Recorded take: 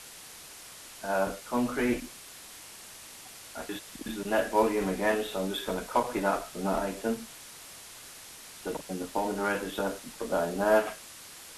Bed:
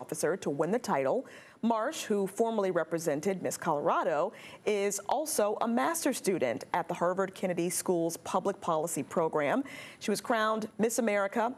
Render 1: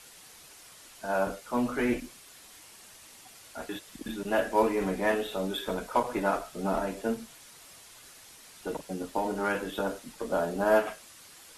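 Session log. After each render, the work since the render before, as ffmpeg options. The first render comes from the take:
-af "afftdn=nr=6:nf=-48"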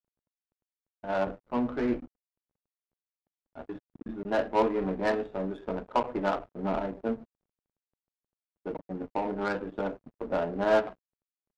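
-af "aeval=exprs='val(0)*gte(abs(val(0)),0.00944)':c=same,adynamicsmooth=sensitivity=1.5:basefreq=530"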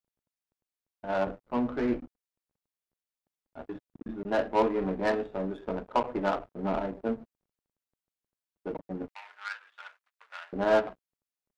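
-filter_complex "[0:a]asettb=1/sr,asplit=3[a][b][c];[a]atrim=end=9.084[d];[b]atrim=start=9.08:end=10.53,asetpts=PTS-STARTPTS,afade=t=in:d=0.004:c=qsin,afade=t=out:st=1.446:d=0.004:c=qsin,highpass=f=1.4k:w=0.5412,highpass=f=1.4k:w=1.3066[e];[c]atrim=start=10.526[f];[d][e]acrossfade=d=0.004:c1=hsin:c2=qsin[g];[g][f]acrossfade=d=0.004:c1=qsin:c2=hsin"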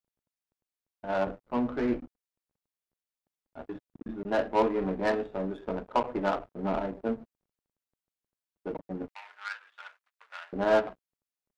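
-af anull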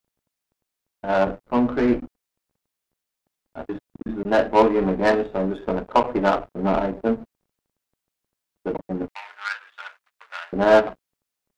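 -af "volume=9dB"

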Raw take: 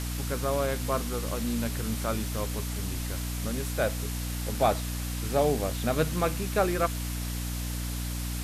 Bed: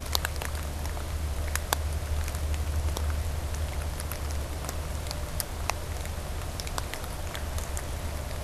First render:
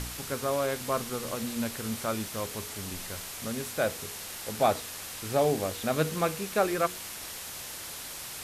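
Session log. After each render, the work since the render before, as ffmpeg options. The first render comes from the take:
-af "bandreject=f=60:t=h:w=4,bandreject=f=120:t=h:w=4,bandreject=f=180:t=h:w=4,bandreject=f=240:t=h:w=4,bandreject=f=300:t=h:w=4,bandreject=f=360:t=h:w=4,bandreject=f=420:t=h:w=4,bandreject=f=480:t=h:w=4"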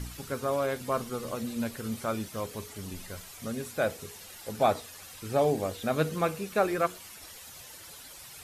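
-af "afftdn=nr=11:nf=-41"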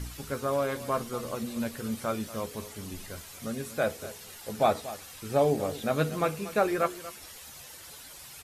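-filter_complex "[0:a]asplit=2[a][b];[b]adelay=14,volume=-11dB[c];[a][c]amix=inputs=2:normalize=0,aecho=1:1:236:0.168"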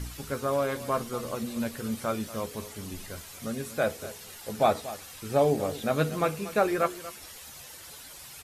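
-af "volume=1dB"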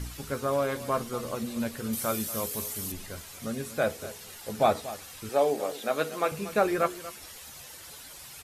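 -filter_complex "[0:a]asettb=1/sr,asplit=3[a][b][c];[a]atrim=end=1.934[d];[b]atrim=start=1.93:end=2.92,asetpts=PTS-STARTPTS,afade=t=in:d=0.004:c=qsin,afade=t=out:st=0.986:d=0.004:c=qsin,aemphasis=mode=production:type=50fm[e];[c]atrim=start=2.916[f];[d][e]acrossfade=d=0.004:c1=hsin:c2=qsin[g];[g][f]acrossfade=d=0.004:c1=qsin:c2=hsin,asettb=1/sr,asplit=3[h][i][j];[h]atrim=end=5.294[k];[i]atrim=start=5.29:end=6.32,asetpts=PTS-STARTPTS,afade=t=in:d=0.004:c=qsin,afade=t=out:st=1.026:d=0.004:c=qsin,highpass=370[l];[j]atrim=start=6.316[m];[k][l]acrossfade=d=0.004:c1=hsin:c2=qsin[n];[n][m]acrossfade=d=0.004:c1=qsin:c2=hsin"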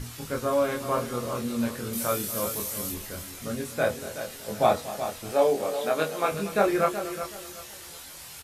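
-filter_complex "[0:a]asplit=2[a][b];[b]adelay=25,volume=-2.5dB[c];[a][c]amix=inputs=2:normalize=0,aecho=1:1:374|748|1122:0.299|0.0806|0.0218"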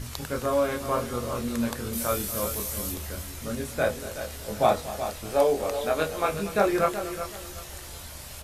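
-filter_complex "[1:a]volume=-11dB[a];[0:a][a]amix=inputs=2:normalize=0"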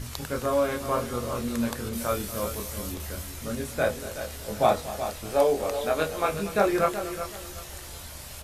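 -filter_complex "[0:a]asettb=1/sr,asplit=3[a][b][c];[a]atrim=end=1.894[d];[b]atrim=start=1.89:end=3,asetpts=PTS-STARTPTS,afade=t=in:d=0.004:c=qsin,afade=t=out:st=1.106:d=0.004:c=qsin,highshelf=f=6.8k:g=-7.5[e];[c]atrim=start=2.996[f];[d][e]acrossfade=d=0.004:c1=hsin:c2=qsin[g];[g][f]acrossfade=d=0.004:c1=qsin:c2=hsin"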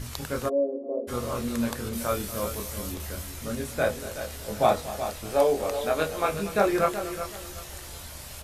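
-filter_complex "[0:a]asplit=3[a][b][c];[a]afade=t=out:st=0.48:d=0.02[d];[b]asuperpass=centerf=400:order=8:qfactor=1.1,afade=t=in:st=0.48:d=0.02,afade=t=out:st=1.07:d=0.02[e];[c]afade=t=in:st=1.07:d=0.02[f];[d][e][f]amix=inputs=3:normalize=0"

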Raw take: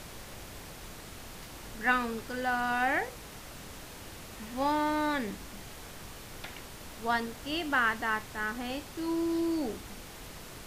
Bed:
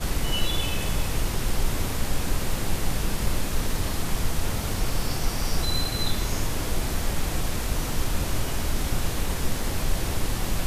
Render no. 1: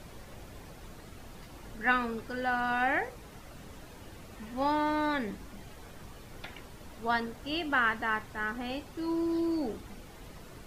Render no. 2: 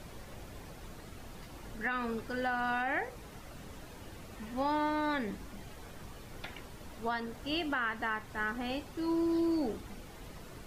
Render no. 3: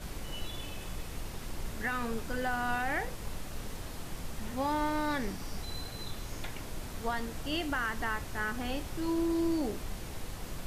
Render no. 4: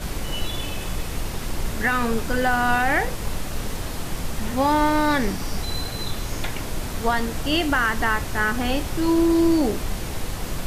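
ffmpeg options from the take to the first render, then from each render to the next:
-af "afftdn=nr=9:nf=-47"
-af "alimiter=limit=-23.5dB:level=0:latency=1:release=196"
-filter_complex "[1:a]volume=-15dB[a];[0:a][a]amix=inputs=2:normalize=0"
-af "volume=12dB"

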